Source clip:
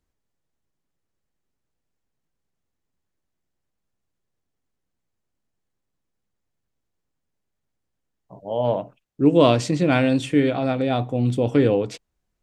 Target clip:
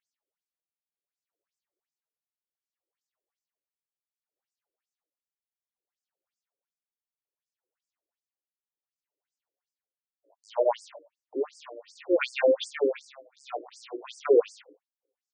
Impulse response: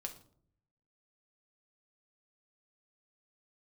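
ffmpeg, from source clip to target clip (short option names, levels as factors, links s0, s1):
-filter_complex "[0:a]acrossover=split=3600[s0][s1];[s1]acompressor=threshold=0.00794:ratio=4:attack=1:release=60[s2];[s0][s2]amix=inputs=2:normalize=0,aeval=exprs='0.75*(cos(1*acos(clip(val(0)/0.75,-1,1)))-cos(1*PI/2))+0.0335*(cos(2*acos(clip(val(0)/0.75,-1,1)))-cos(2*PI/2))+0.0211*(cos(5*acos(clip(val(0)/0.75,-1,1)))-cos(5*PI/2))+0.0266*(cos(8*acos(clip(val(0)/0.75,-1,1)))-cos(8*PI/2))':c=same,tremolo=f=0.79:d=0.96,atempo=0.81,asplit=2[s3][s4];[s4]acrusher=bits=5:mix=0:aa=0.000001,volume=0.473[s5];[s3][s5]amix=inputs=2:normalize=0,asplit=2[s6][s7];[s7]adelay=19,volume=0.282[s8];[s6][s8]amix=inputs=2:normalize=0,asplit=2[s9][s10];[1:a]atrim=start_sample=2205[s11];[s10][s11]afir=irnorm=-1:irlink=0,volume=0.224[s12];[s9][s12]amix=inputs=2:normalize=0,afftfilt=real='re*between(b*sr/1024,410*pow(6700/410,0.5+0.5*sin(2*PI*2.7*pts/sr))/1.41,410*pow(6700/410,0.5+0.5*sin(2*PI*2.7*pts/sr))*1.41)':imag='im*between(b*sr/1024,410*pow(6700/410,0.5+0.5*sin(2*PI*2.7*pts/sr))/1.41,410*pow(6700/410,0.5+0.5*sin(2*PI*2.7*pts/sr))*1.41)':win_size=1024:overlap=0.75"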